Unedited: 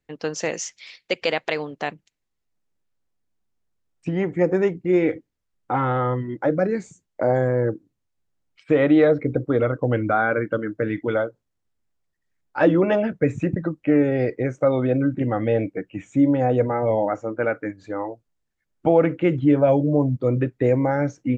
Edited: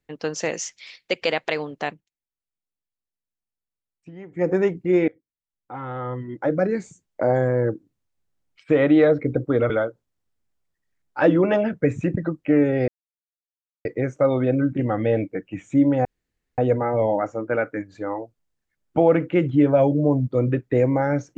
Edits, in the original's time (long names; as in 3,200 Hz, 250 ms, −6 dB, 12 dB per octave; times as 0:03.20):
0:01.88–0:04.49: duck −16.5 dB, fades 0.18 s
0:05.08–0:06.61: fade in quadratic, from −23.5 dB
0:09.70–0:11.09: remove
0:14.27: splice in silence 0.97 s
0:16.47: splice in room tone 0.53 s